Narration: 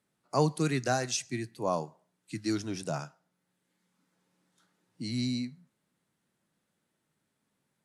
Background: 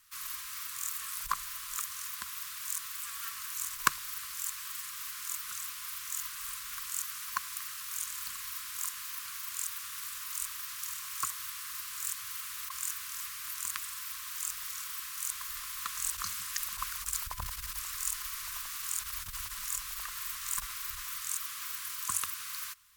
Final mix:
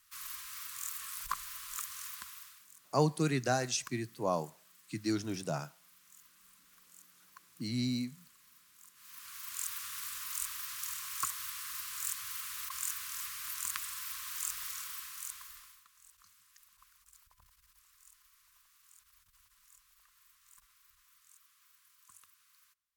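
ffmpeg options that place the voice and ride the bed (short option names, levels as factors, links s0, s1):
-filter_complex "[0:a]adelay=2600,volume=0.794[s0];[1:a]volume=7.5,afade=t=out:st=2.08:d=0.58:silence=0.11885,afade=t=in:st=8.94:d=0.8:silence=0.0841395,afade=t=out:st=14.63:d=1.21:silence=0.0501187[s1];[s0][s1]amix=inputs=2:normalize=0"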